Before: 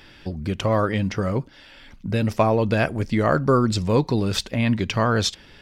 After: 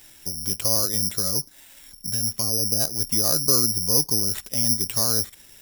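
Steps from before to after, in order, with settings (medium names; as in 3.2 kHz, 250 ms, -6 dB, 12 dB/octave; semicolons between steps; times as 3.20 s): low-pass that closes with the level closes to 1.1 kHz, closed at -17 dBFS; 2.09–2.79 s: peaking EQ 360 Hz -> 1.4 kHz -13 dB 1.2 oct; careless resampling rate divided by 8×, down none, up zero stuff; trim -10 dB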